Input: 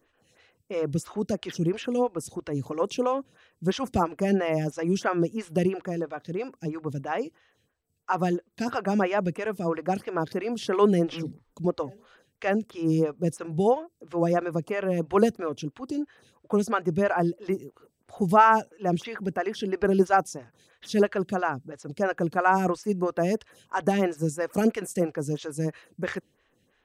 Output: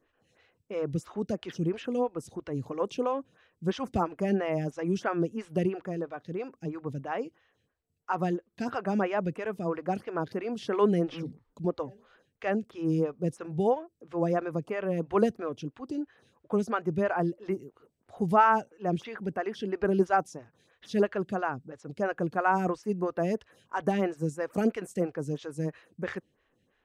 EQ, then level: treble shelf 5 kHz -9.5 dB; -3.5 dB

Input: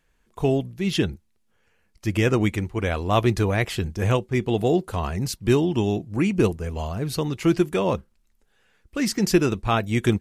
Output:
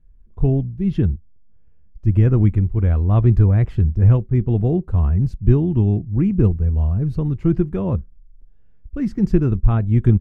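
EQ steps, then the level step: dynamic bell 1.4 kHz, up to +7 dB, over -41 dBFS, Q 0.95; tilt EQ -4.5 dB/octave; bass shelf 300 Hz +11.5 dB; -13.5 dB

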